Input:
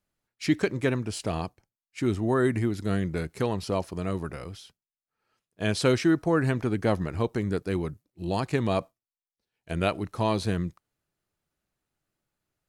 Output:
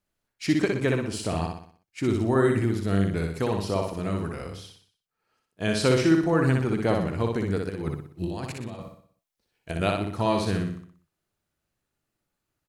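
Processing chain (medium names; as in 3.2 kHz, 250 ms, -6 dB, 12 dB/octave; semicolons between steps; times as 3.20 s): 7.69–9.79 s: compressor with a negative ratio -32 dBFS, ratio -0.5; on a send: feedback delay 61 ms, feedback 45%, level -3.5 dB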